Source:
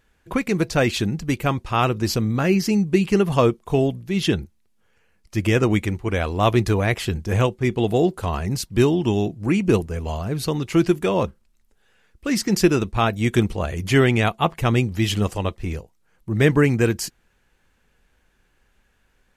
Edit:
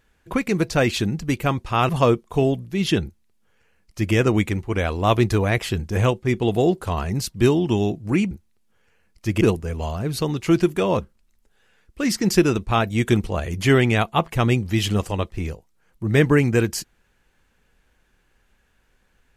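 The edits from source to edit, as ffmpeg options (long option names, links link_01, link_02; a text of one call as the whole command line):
ffmpeg -i in.wav -filter_complex "[0:a]asplit=4[link_01][link_02][link_03][link_04];[link_01]atrim=end=1.892[link_05];[link_02]atrim=start=3.248:end=9.672[link_06];[link_03]atrim=start=4.398:end=5.502[link_07];[link_04]atrim=start=9.668[link_08];[link_05][link_06]acrossfade=duration=0.004:curve1=hsin:curve2=hsin[link_09];[link_09][link_07]acrossfade=duration=0.004:curve1=hsin:curve2=hsin[link_10];[link_10][link_08]acrossfade=duration=0.004:curve1=hsin:curve2=hsin" out.wav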